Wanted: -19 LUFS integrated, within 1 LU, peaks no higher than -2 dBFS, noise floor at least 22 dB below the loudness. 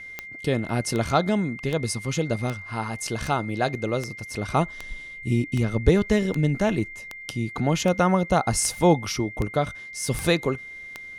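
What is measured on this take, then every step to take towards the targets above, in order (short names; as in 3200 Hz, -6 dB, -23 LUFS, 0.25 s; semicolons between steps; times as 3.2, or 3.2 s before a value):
clicks 15; steady tone 2100 Hz; tone level -37 dBFS; loudness -25.0 LUFS; peak -4.5 dBFS; loudness target -19.0 LUFS
-> de-click; notch 2100 Hz, Q 30; gain +6 dB; limiter -2 dBFS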